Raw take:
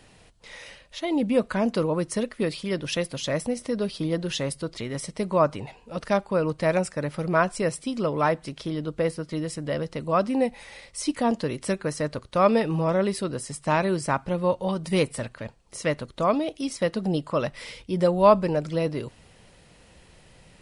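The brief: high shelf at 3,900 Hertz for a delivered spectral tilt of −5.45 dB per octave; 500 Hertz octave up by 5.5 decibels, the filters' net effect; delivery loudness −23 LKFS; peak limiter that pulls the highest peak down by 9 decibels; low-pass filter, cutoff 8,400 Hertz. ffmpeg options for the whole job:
ffmpeg -i in.wav -af "lowpass=8400,equalizer=frequency=500:width_type=o:gain=6.5,highshelf=frequency=3900:gain=3,volume=1dB,alimiter=limit=-10dB:level=0:latency=1" out.wav

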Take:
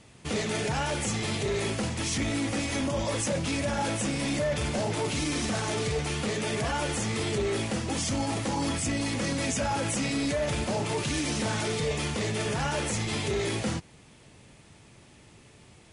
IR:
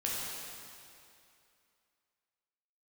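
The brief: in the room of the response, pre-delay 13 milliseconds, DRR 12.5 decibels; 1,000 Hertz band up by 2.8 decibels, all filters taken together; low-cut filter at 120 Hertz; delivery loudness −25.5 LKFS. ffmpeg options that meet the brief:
-filter_complex "[0:a]highpass=120,equalizer=frequency=1000:width_type=o:gain=3.5,asplit=2[link_01][link_02];[1:a]atrim=start_sample=2205,adelay=13[link_03];[link_02][link_03]afir=irnorm=-1:irlink=0,volume=-18dB[link_04];[link_01][link_04]amix=inputs=2:normalize=0,volume=3dB"

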